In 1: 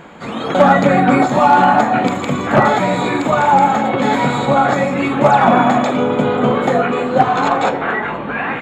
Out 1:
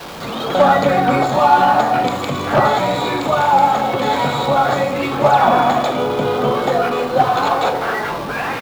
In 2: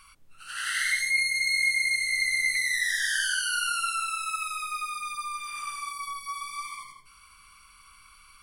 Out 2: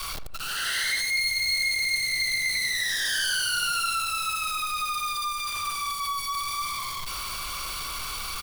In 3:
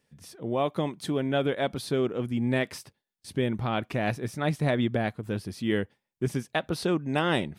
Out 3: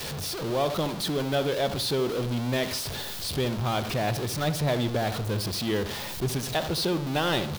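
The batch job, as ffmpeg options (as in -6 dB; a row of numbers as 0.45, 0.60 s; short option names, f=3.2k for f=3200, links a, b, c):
-filter_complex "[0:a]aeval=exprs='val(0)+0.5*0.0501*sgn(val(0))':c=same,equalizer=f=250:t=o:w=1:g=-5,equalizer=f=2k:t=o:w=1:g=-5,equalizer=f=4k:t=o:w=1:g=5,equalizer=f=8k:t=o:w=1:g=-4,asplit=2[a][b];[b]adelay=74,lowpass=f=1.8k:p=1,volume=-11dB,asplit=2[c][d];[d]adelay=74,lowpass=f=1.8k:p=1,volume=0.43,asplit=2[e][f];[f]adelay=74,lowpass=f=1.8k:p=1,volume=0.43,asplit=2[g][h];[h]adelay=74,lowpass=f=1.8k:p=1,volume=0.43[i];[a][c][e][g][i]amix=inputs=5:normalize=0,adynamicequalizer=threshold=0.0251:dfrequency=190:dqfactor=2:tfrequency=190:tqfactor=2:attack=5:release=100:ratio=0.375:range=2:mode=cutabove:tftype=bell,volume=-1dB"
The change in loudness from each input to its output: -2.0, +0.5, +1.0 LU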